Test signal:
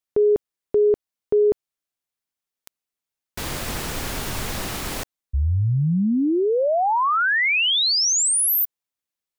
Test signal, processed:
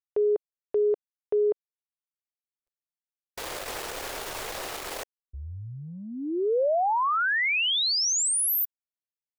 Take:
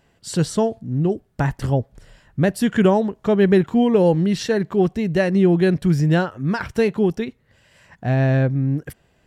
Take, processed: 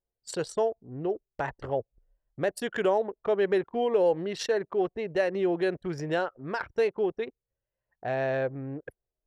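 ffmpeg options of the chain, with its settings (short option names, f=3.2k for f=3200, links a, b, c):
-af "anlmdn=63.1,lowshelf=f=310:t=q:w=1.5:g=-13.5,acompressor=threshold=-24dB:ratio=1.5:attack=0.35:release=88:knee=6:detection=rms,volume=-3dB"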